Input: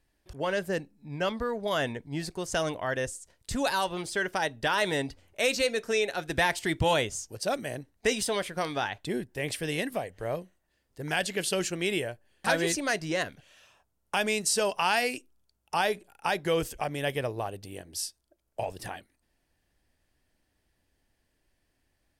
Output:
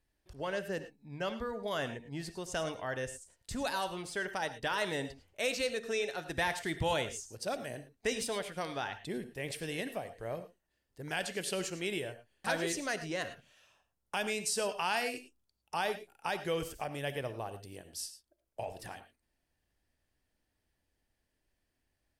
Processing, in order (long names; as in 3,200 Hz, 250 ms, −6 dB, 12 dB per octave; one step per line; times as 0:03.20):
reverb whose tail is shaped and stops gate 130 ms rising, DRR 11 dB
level −7 dB